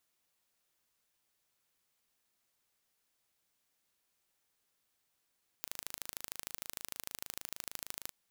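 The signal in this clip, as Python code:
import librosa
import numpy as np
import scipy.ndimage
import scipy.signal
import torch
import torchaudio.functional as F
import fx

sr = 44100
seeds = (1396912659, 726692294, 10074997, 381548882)

y = fx.impulse_train(sr, length_s=2.48, per_s=26.5, accent_every=2, level_db=-11.5)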